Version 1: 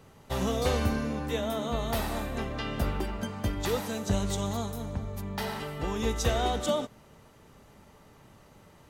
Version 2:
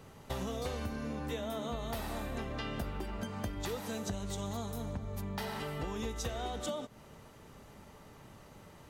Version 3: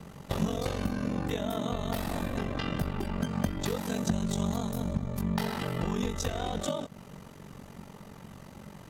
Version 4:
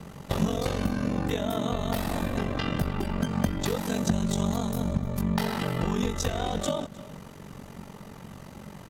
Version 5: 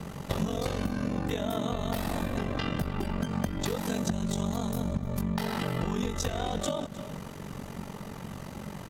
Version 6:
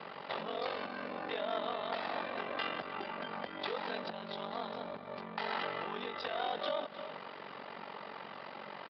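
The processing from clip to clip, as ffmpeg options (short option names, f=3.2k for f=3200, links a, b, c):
-af "acompressor=threshold=-36dB:ratio=6,volume=1dB"
-af "equalizer=f=180:t=o:w=0.47:g=10,aeval=exprs='val(0)*sin(2*PI*23*n/s)':c=same,volume=7.5dB"
-filter_complex "[0:a]asplit=2[a][b];[b]adelay=309,volume=-18dB,highshelf=f=4k:g=-6.95[c];[a][c]amix=inputs=2:normalize=0,volume=3.5dB"
-af "acompressor=threshold=-33dB:ratio=2.5,volume=3.5dB"
-af "aresample=11025,asoftclip=type=tanh:threshold=-25.5dB,aresample=44100,highpass=590,lowpass=3.8k,volume=2dB"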